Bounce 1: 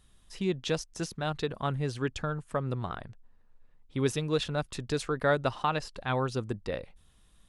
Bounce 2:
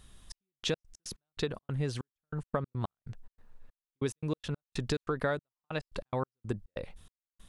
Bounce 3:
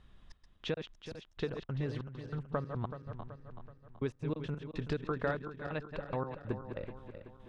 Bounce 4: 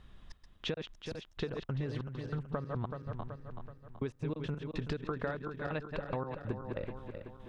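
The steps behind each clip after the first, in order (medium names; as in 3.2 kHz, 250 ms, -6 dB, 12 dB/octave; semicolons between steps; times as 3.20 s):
compression 6:1, threshold -34 dBFS, peak gain reduction 13 dB; trance gate "xxx...x.x.x..xx." 142 bpm -60 dB; trim +6 dB
backward echo that repeats 189 ms, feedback 69%, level -8 dB; low-pass 2.7 kHz 12 dB/octave; trim -3 dB
compression 6:1, threshold -36 dBFS, peak gain reduction 8 dB; trim +4 dB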